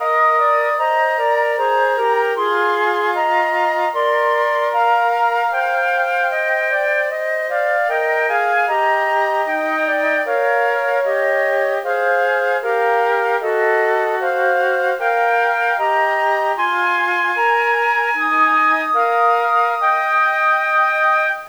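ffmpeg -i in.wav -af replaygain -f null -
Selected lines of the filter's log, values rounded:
track_gain = -0.1 dB
track_peak = 0.438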